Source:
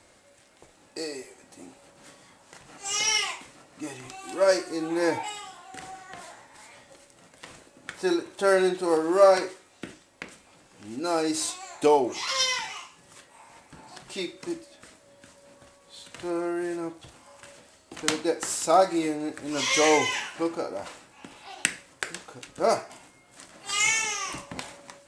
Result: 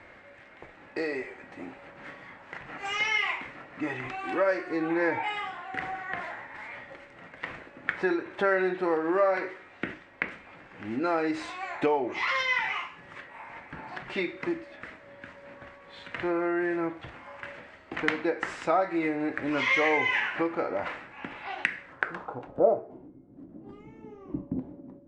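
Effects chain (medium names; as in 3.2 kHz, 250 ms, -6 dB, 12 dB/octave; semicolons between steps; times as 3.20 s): compression 3:1, threshold -32 dBFS, peak gain reduction 14.5 dB; low-pass sweep 2 kHz -> 290 Hz, 21.79–23.17 s; trim +5 dB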